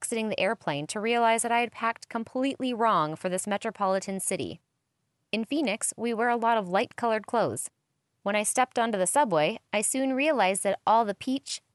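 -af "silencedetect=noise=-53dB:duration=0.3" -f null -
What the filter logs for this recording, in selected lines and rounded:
silence_start: 4.56
silence_end: 5.33 | silence_duration: 0.77
silence_start: 7.68
silence_end: 8.25 | silence_duration: 0.57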